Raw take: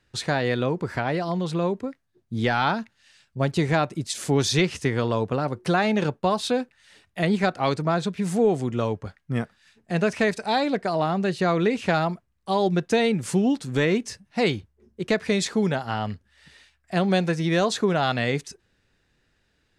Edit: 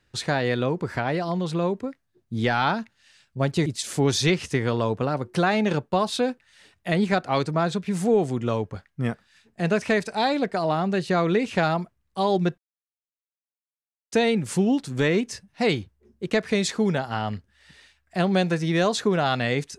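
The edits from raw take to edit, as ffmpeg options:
ffmpeg -i in.wav -filter_complex "[0:a]asplit=3[link_01][link_02][link_03];[link_01]atrim=end=3.662[link_04];[link_02]atrim=start=3.968:end=12.89,asetpts=PTS-STARTPTS,afade=type=out:start_time=8.918:duration=0.004:curve=hsin,apad=pad_dur=1.54[link_05];[link_03]atrim=start=12.89,asetpts=PTS-STARTPTS,afade=type=in:duration=0.004:curve=hsin[link_06];[link_05][link_06]concat=n=2:v=0:a=1[link_07];[link_04][link_07]acrossfade=duration=0.004:curve1=hsin:curve2=hsin" out.wav

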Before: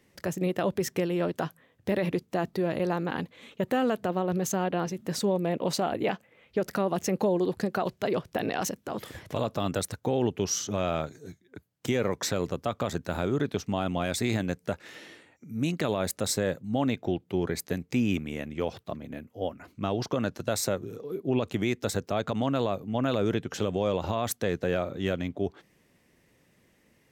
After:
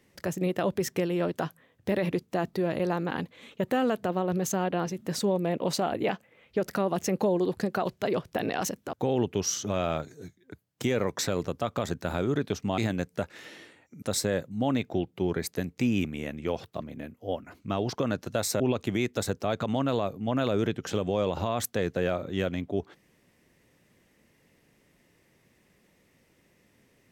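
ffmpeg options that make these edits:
ffmpeg -i in.wav -filter_complex "[0:a]asplit=5[link_01][link_02][link_03][link_04][link_05];[link_01]atrim=end=8.932[link_06];[link_02]atrim=start=9.968:end=13.822[link_07];[link_03]atrim=start=14.278:end=15.522[link_08];[link_04]atrim=start=16.148:end=20.732[link_09];[link_05]atrim=start=21.268[link_10];[link_06][link_07]acrossfade=duration=0.004:curve1=hsin:curve2=hsin[link_11];[link_11][link_08]acrossfade=duration=0.004:curve1=hsin:curve2=hsin[link_12];[link_12][link_09]acrossfade=duration=0.004:curve1=hsin:curve2=hsin[link_13];[link_13][link_10]acrossfade=duration=0.004:curve1=hsin:curve2=hsin" out.wav

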